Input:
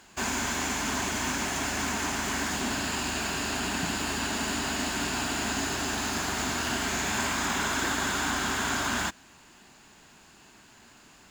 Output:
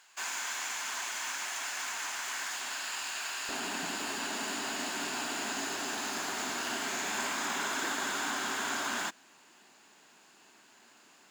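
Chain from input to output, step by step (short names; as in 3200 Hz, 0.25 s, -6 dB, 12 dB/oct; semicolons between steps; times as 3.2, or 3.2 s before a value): HPF 1000 Hz 12 dB/oct, from 3.49 s 290 Hz; gain -4.5 dB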